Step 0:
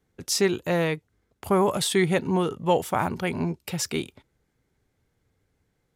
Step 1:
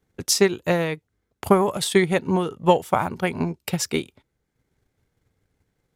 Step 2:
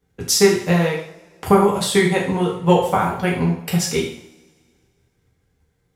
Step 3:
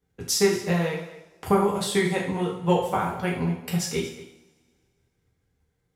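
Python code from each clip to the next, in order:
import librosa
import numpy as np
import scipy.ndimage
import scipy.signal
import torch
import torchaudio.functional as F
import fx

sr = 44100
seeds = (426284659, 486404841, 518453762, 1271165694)

y1 = fx.transient(x, sr, attack_db=8, sustain_db=-4)
y2 = fx.rev_double_slope(y1, sr, seeds[0], early_s=0.57, late_s=2.1, knee_db=-24, drr_db=-3.5)
y2 = y2 * 10.0 ** (-1.5 / 20.0)
y3 = y2 + 10.0 ** (-16.5 / 20.0) * np.pad(y2, (int(230 * sr / 1000.0), 0))[:len(y2)]
y3 = y3 * 10.0 ** (-7.0 / 20.0)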